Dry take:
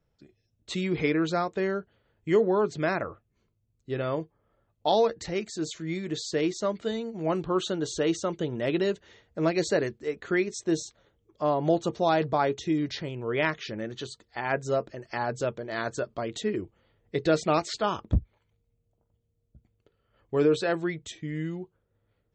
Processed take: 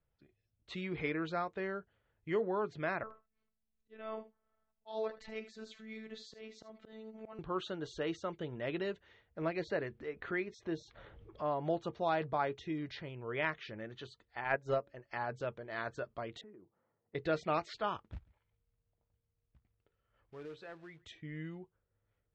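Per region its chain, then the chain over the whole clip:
3.03–7.39 s: robot voice 219 Hz + slow attack 248 ms + delay 76 ms -14 dB
9.42–11.51 s: upward compressor, threshold -27 dBFS + distance through air 110 m
14.44–15.11 s: peaking EQ 6.5 kHz +3 dB 0.22 oct + de-hum 280.7 Hz, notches 3 + transient shaper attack +8 dB, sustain -8 dB
16.41–17.15 s: Chebyshev band-pass 180–1100 Hz + compression 3:1, threshold -46 dBFS
17.97–21.05 s: short-mantissa float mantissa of 2-bit + compression 1.5:1, threshold -59 dBFS + delay 140 ms -23.5 dB
whole clip: low-pass 2.8 kHz 12 dB/octave; peaking EQ 270 Hz -7 dB 2.6 oct; trim -5.5 dB

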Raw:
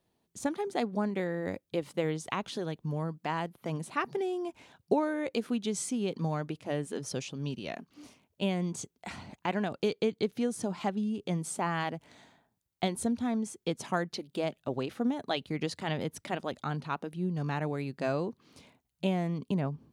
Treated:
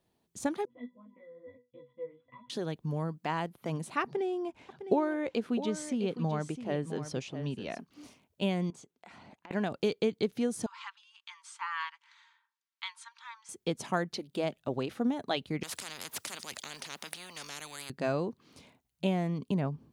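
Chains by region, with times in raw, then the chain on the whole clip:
0.65–2.50 s: pitch-class resonator B, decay 0.23 s + careless resampling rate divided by 6×, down none, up filtered + three-phase chorus
4.03–7.79 s: low-pass 3.4 kHz 6 dB/octave + delay 658 ms -11 dB
8.70–9.51 s: high-pass 300 Hz 6 dB/octave + treble shelf 4.2 kHz -10.5 dB + compression, threshold -49 dBFS
10.66–13.49 s: steep high-pass 930 Hz 96 dB/octave + distance through air 120 m + comb 4.4 ms, depth 39%
15.63–17.90 s: high-pass 270 Hz + spectrum-flattening compressor 10:1
whole clip: none

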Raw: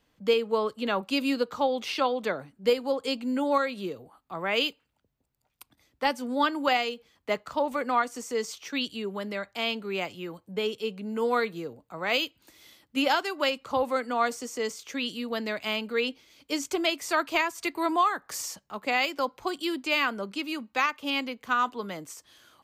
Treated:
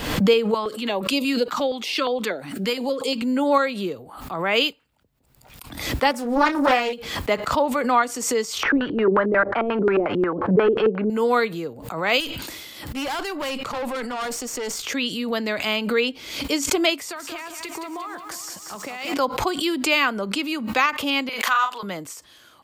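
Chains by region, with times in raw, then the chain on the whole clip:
0.54–3.22 s: high-pass 250 Hz + step-sequenced notch 8.5 Hz 480–1600 Hz
6.11–6.93 s: peaking EQ 3.7 kHz -7 dB 0.89 oct + doubling 30 ms -8 dB + loudspeaker Doppler distortion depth 0.5 ms
8.63–11.10 s: overdrive pedal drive 19 dB, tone 1.5 kHz, clips at -16 dBFS + LFO low-pass square 5.6 Hz 380–1500 Hz
12.20–14.82 s: valve stage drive 31 dB, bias 0.55 + decay stretcher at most 26 dB/s
16.97–19.14 s: compression 12:1, threshold -36 dBFS + bit-crushed delay 184 ms, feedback 55%, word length 10-bit, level -7 dB
21.29–21.83 s: high-pass 900 Hz + doubling 39 ms -6.5 dB
whole clip: band-stop 6.1 kHz, Q 19; swell ahead of each attack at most 64 dB/s; trim +6 dB

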